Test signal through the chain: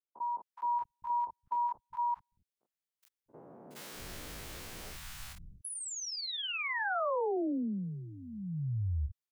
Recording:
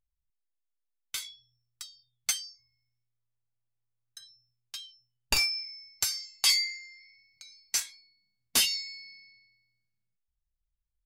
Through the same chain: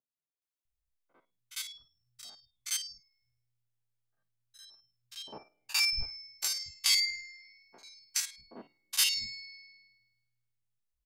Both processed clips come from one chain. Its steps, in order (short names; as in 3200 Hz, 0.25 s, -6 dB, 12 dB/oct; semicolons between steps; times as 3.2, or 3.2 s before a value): stepped spectrum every 50 ms; three bands offset in time mids, highs, lows 0.42/0.65 s, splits 170/880 Hz